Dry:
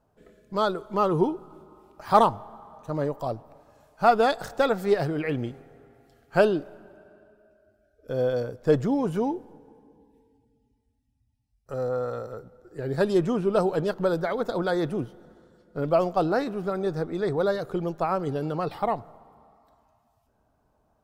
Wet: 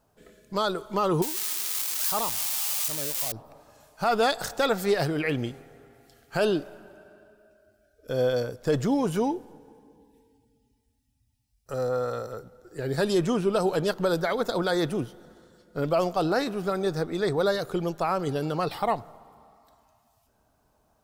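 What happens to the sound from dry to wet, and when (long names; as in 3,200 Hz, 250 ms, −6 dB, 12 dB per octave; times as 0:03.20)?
0:01.22–0:03.32: spike at every zero crossing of −13 dBFS
whole clip: high-shelf EQ 2,300 Hz +11 dB; brickwall limiter −14.5 dBFS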